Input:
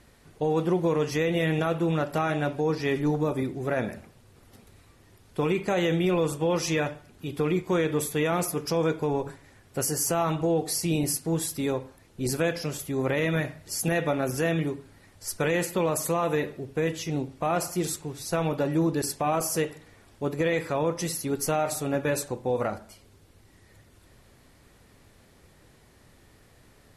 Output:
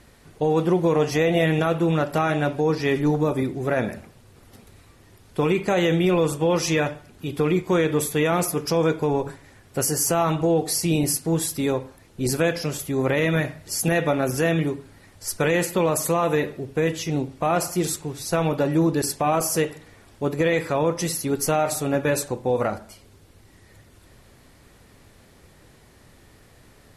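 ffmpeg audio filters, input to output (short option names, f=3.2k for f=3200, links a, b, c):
-filter_complex "[0:a]asettb=1/sr,asplit=3[a][b][c];[a]atrim=end=0.954[d];[b]atrim=start=0.95:end=1.46,asetpts=PTS-STARTPTS,afade=t=in:d=0.004:c=qsin,afade=t=out:st=0.506:d=0.004:c=qsin,equalizer=f=710:t=o:w=0.35:g=10.5[e];[c]atrim=start=1.456[f];[d][e]acrossfade=d=0.004:c1=hsin:c2=qsin[g];[g][f]acrossfade=d=0.004:c1=qsin:c2=hsin,volume=4.5dB"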